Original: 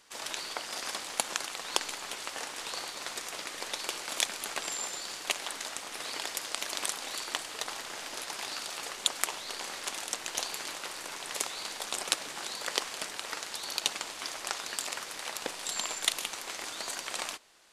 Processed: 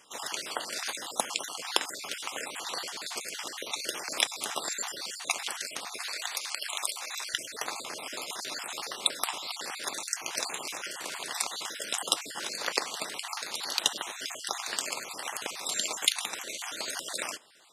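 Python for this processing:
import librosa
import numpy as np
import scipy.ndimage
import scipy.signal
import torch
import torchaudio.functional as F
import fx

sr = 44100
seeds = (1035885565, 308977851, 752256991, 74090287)

y = fx.spec_dropout(x, sr, seeds[0], share_pct=41)
y = fx.highpass(y, sr, hz=fx.steps((0.0, 110.0), (5.98, 730.0), (7.34, 120.0)), slope=12)
y = F.gain(torch.from_numpy(y), 4.0).numpy()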